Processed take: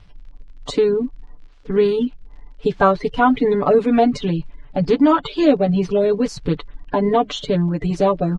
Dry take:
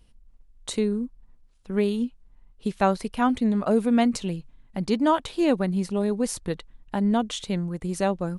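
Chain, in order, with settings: bin magnitudes rounded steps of 30 dB; comb 6.9 ms, depth 87%; in parallel at +1 dB: compressor, threshold -27 dBFS, peak gain reduction 13 dB; on the sum: crackle 52/s -41 dBFS; air absorption 180 m; gain +3.5 dB

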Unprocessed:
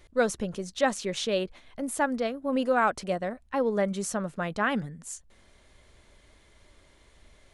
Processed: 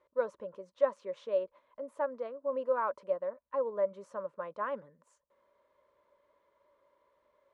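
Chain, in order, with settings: double band-pass 750 Hz, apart 0.79 oct

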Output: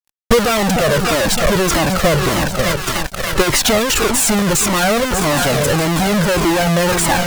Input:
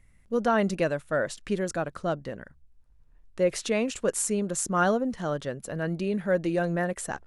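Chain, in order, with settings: half-waves squared off; split-band echo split 1000 Hz, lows 0.305 s, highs 0.59 s, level -13.5 dB; fuzz box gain 46 dB, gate -48 dBFS; transient shaper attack +8 dB, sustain -2 dB; cascading flanger falling 1.7 Hz; gain +4 dB

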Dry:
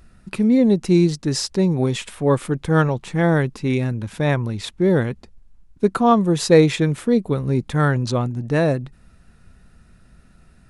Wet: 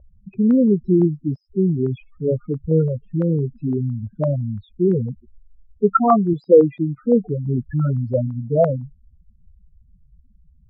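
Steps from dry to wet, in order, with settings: loudest bins only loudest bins 4; 6.33–6.98 bell 85 Hz -14 dB 1.2 oct; stepped low-pass 5.9 Hz 600–1600 Hz

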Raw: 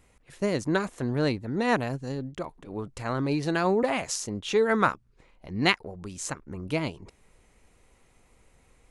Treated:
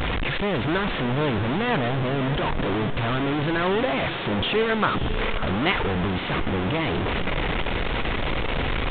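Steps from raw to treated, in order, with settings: delta modulation 32 kbps, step -18 dBFS; downsampling 8000 Hz; diffused feedback echo 0.614 s, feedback 44%, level -10.5 dB

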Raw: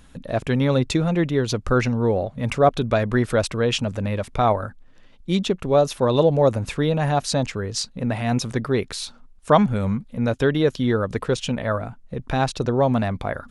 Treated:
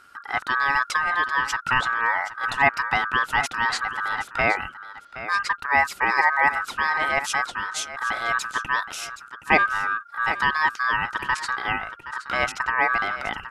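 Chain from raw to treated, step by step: echo 0.771 s -13.5 dB; ring modulator 1400 Hz

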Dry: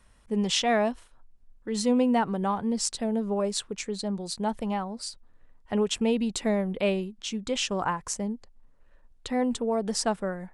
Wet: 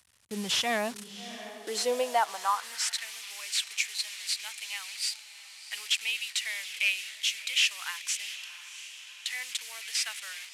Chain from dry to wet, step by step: delta modulation 64 kbps, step -37.5 dBFS; gate with hold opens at -35 dBFS; tilt shelf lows -8.5 dB, about 1100 Hz; diffused feedback echo 0.698 s, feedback 61%, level -14 dB; high-pass sweep 88 Hz -> 2300 Hz, 0.61–3.12; gain -3 dB

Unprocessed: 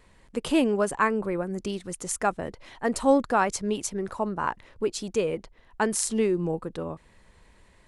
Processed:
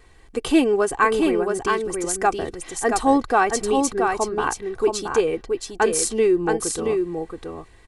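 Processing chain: comb 2.6 ms, depth 63%; on a send: echo 0.675 s -4.5 dB; on the sum: gain +3.5 dB

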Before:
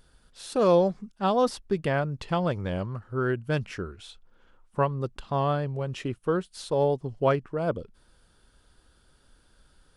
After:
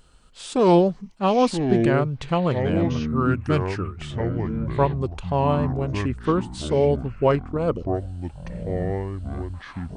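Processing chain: echoes that change speed 0.698 s, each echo -7 st, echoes 3, each echo -6 dB; formant shift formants -2 st; gain +4.5 dB

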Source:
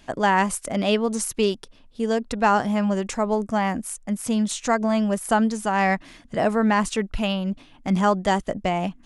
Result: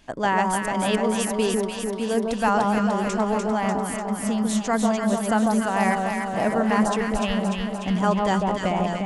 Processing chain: vibrato 6.6 Hz 7.2 cents; echo with dull and thin repeats by turns 0.148 s, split 1200 Hz, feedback 81%, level -2 dB; gain -3 dB

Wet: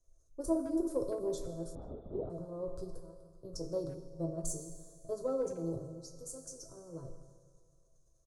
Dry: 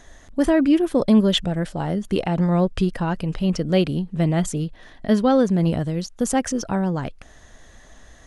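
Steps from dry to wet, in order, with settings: 2.98–3.45 level quantiser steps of 20 dB; transient shaper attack +4 dB, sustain +8 dB; 5.84–6.77 compressor 3:1, threshold -25 dBFS, peak gain reduction 9 dB; fixed phaser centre 810 Hz, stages 6; resonator bank A2 minor, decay 0.22 s; tube stage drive 15 dB, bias 0.75; Butterworth band-stop 2100 Hz, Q 0.5; Schroeder reverb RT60 2.9 s, combs from 29 ms, DRR 7 dB; 1.75–2.3 LPC vocoder at 8 kHz whisper; speakerphone echo 0.16 s, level -12 dB; three-band expander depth 40%; gain +1 dB

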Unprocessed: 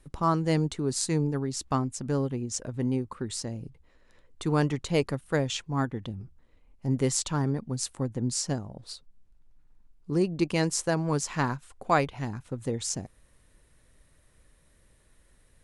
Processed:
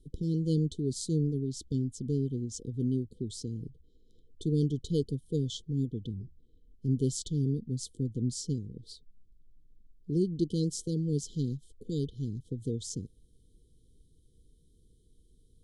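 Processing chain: dynamic EQ 450 Hz, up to -4 dB, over -38 dBFS, Q 0.75; brick-wall FIR band-stop 500–3000 Hz; high shelf 3200 Hz -10.5 dB

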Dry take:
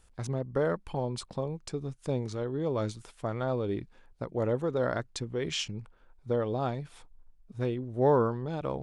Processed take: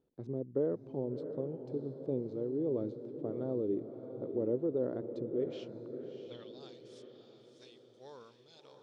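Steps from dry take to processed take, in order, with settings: graphic EQ 125/250/500/4000 Hz +10/+6/+6/+11 dB; band-pass sweep 350 Hz -> 5900 Hz, 5.39–6.6; diffused feedback echo 0.654 s, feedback 48%, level -8.5 dB; gain -6 dB

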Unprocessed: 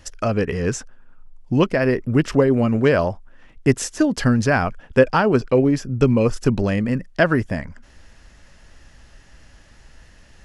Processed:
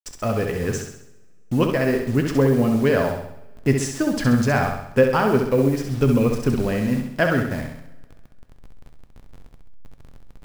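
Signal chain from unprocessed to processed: level-crossing sampler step -32.5 dBFS; flutter echo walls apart 11.3 m, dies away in 0.66 s; two-slope reverb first 0.5 s, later 2 s, from -20 dB, DRR 8.5 dB; gain -3.5 dB

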